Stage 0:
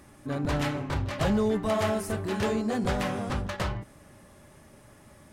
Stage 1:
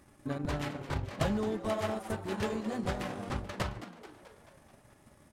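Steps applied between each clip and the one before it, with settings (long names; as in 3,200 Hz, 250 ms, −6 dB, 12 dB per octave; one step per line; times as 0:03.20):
transient designer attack +7 dB, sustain −11 dB
echo with shifted repeats 217 ms, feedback 58%, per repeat +120 Hz, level −13.5 dB
level −7.5 dB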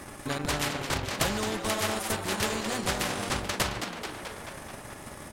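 every bin compressed towards the loudest bin 2 to 1
level +7.5 dB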